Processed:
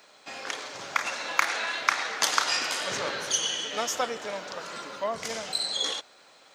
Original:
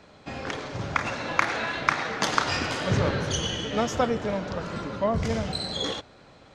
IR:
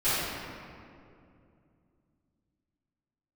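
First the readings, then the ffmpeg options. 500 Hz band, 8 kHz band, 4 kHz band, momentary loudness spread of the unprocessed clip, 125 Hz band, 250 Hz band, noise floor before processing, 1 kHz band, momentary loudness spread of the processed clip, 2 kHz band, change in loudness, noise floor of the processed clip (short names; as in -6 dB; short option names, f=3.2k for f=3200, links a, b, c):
-6.0 dB, +6.5 dB, +3.0 dB, 8 LU, -23.0 dB, -14.5 dB, -53 dBFS, -2.5 dB, 11 LU, 0.0 dB, -1.0 dB, -56 dBFS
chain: -af "highpass=f=620:p=1,aemphasis=mode=production:type=bsi,volume=-1dB"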